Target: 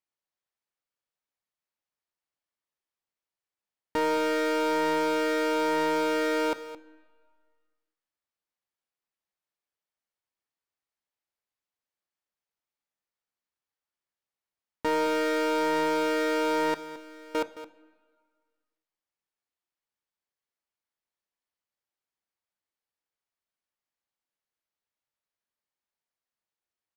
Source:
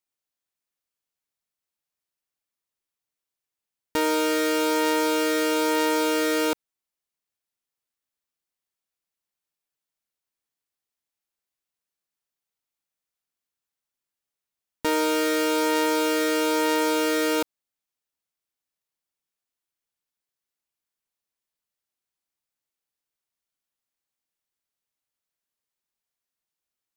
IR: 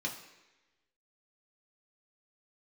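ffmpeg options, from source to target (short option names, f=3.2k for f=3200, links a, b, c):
-filter_complex "[0:a]asettb=1/sr,asplit=3[a][b][c];[a]atrim=end=16.744[d];[b]atrim=start=16.74:end=17.35,asetpts=PTS-STARTPTS,afade=t=in:d=0.004:c=qsin,afade=t=out:st=0.606:d=0.004:c=qsin,agate=range=-33dB:threshold=-9dB:ratio=3:detection=peak[e];[c]atrim=start=17.346[f];[d][e]acrossfade=d=0.004:c1=hsin:c2=qsin[g];[g][f]acrossfade=d=0.004:c1=qsin:c2=hsin,asplit=2[h][i];[i]highpass=f=720:p=1,volume=5dB,asoftclip=type=tanh:threshold=-14.5dB[j];[h][j]amix=inputs=2:normalize=0,lowpass=f=1.8k:p=1,volume=-6dB,aecho=1:1:218:0.2,asplit=2[k][l];[1:a]atrim=start_sample=2205,asetrate=28665,aresample=44100[m];[l][m]afir=irnorm=-1:irlink=0,volume=-18dB[n];[k][n]amix=inputs=2:normalize=0"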